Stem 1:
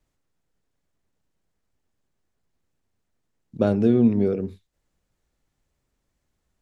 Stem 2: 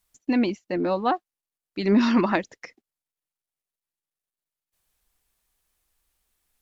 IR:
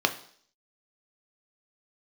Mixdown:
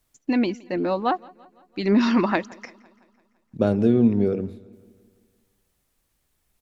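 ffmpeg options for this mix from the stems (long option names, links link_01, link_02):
-filter_complex "[0:a]volume=0dB,asplit=2[link_01][link_02];[link_02]volume=-22dB[link_03];[1:a]volume=0.5dB,asplit=2[link_04][link_05];[link_05]volume=-24dB[link_06];[link_03][link_06]amix=inputs=2:normalize=0,aecho=0:1:169|338|507|676|845|1014|1183|1352:1|0.56|0.314|0.176|0.0983|0.0551|0.0308|0.0173[link_07];[link_01][link_04][link_07]amix=inputs=3:normalize=0"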